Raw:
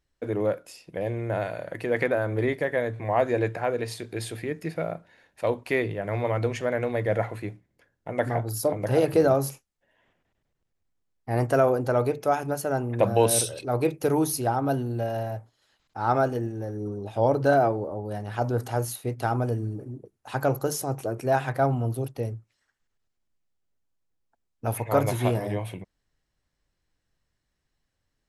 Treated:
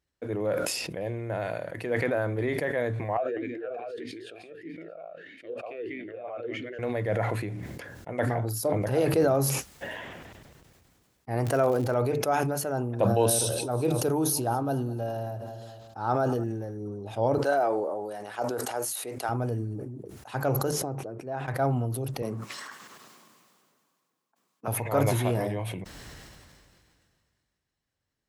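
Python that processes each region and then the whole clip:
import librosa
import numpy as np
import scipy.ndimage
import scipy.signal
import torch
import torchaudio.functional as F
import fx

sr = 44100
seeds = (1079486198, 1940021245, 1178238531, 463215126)

y = fx.chain(x, sr, fx.echo_single(ms=194, db=-4.0),
    fx.vowel_sweep(vowels='a-i', hz=1.6), at=(3.17, 6.79))
y = fx.highpass(y, sr, hz=55.0, slope=12, at=(11.44, 11.93), fade=0.02)
y = fx.dmg_crackle(y, sr, seeds[0], per_s=97.0, level_db=-29.0, at=(11.44, 11.93), fade=0.02)
y = fx.chain(y, sr, fx.peak_eq(hz=2100.0, db=-10.5, octaves=0.44),
    fx.echo_feedback(ms=211, feedback_pct=47, wet_db=-21), at=(12.71, 16.44))
y = fx.chain(y, sr, fx.highpass(hz=400.0, slope=12),
    fx.peak_eq(hz=8300.0, db=5.5, octaves=0.63), at=(17.38, 19.29))
y = fx.chain(y, sr, fx.bandpass_q(hz=170.0, q=0.5),
    fx.tilt_eq(slope=3.0), at=(20.71, 21.48))
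y = fx.chain(y, sr, fx.halfwave_gain(db=-3.0),
    fx.highpass(hz=170.0, slope=24),
    fx.peak_eq(hz=1100.0, db=12.0, octaves=0.31), at=(22.22, 24.68))
y = scipy.signal.sosfilt(scipy.signal.butter(2, 56.0, 'highpass', fs=sr, output='sos'), y)
y = fx.sustainer(y, sr, db_per_s=26.0)
y = y * 10.0 ** (-4.0 / 20.0)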